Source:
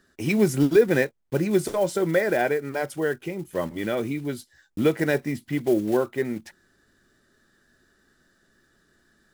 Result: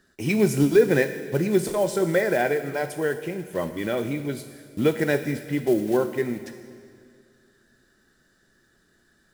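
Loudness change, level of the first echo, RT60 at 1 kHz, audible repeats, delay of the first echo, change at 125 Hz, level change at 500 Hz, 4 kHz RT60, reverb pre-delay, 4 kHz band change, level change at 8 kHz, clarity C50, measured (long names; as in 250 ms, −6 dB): +0.5 dB, no echo audible, 2.1 s, no echo audible, no echo audible, +1.0 dB, +0.5 dB, 1.7 s, 3 ms, +1.0 dB, +1.5 dB, 11.0 dB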